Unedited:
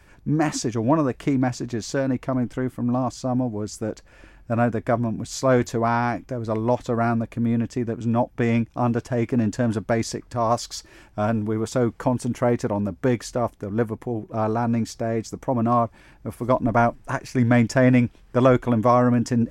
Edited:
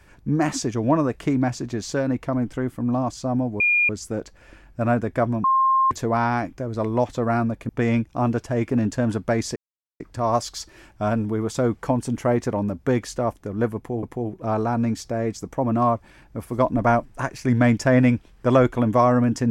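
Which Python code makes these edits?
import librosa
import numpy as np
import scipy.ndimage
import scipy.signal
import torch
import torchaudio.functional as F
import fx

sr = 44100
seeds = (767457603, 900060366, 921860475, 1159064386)

y = fx.edit(x, sr, fx.insert_tone(at_s=3.6, length_s=0.29, hz=2420.0, db=-15.5),
    fx.bleep(start_s=5.15, length_s=0.47, hz=1060.0, db=-15.0),
    fx.cut(start_s=7.4, length_s=0.9),
    fx.insert_silence(at_s=10.17, length_s=0.44),
    fx.repeat(start_s=13.93, length_s=0.27, count=2), tone=tone)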